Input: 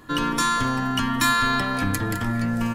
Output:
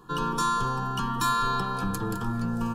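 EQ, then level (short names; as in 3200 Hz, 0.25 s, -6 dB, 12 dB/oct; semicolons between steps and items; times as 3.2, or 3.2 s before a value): high shelf 3700 Hz -8 dB; fixed phaser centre 410 Hz, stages 8; 0.0 dB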